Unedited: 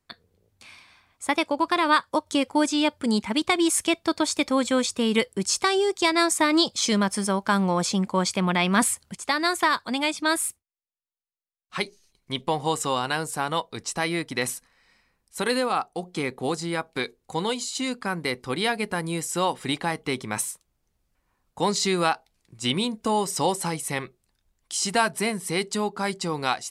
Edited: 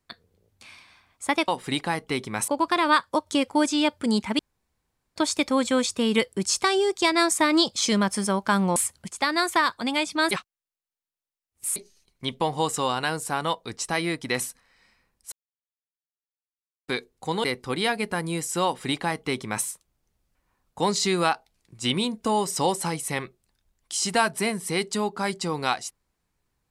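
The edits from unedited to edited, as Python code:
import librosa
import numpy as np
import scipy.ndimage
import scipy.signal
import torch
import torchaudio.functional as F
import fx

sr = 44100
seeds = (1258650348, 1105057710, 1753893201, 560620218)

y = fx.edit(x, sr, fx.room_tone_fill(start_s=3.39, length_s=0.77),
    fx.cut(start_s=7.76, length_s=1.07),
    fx.reverse_span(start_s=10.38, length_s=1.45),
    fx.silence(start_s=15.39, length_s=1.56),
    fx.cut(start_s=17.51, length_s=0.73),
    fx.duplicate(start_s=19.45, length_s=1.0, to_s=1.48), tone=tone)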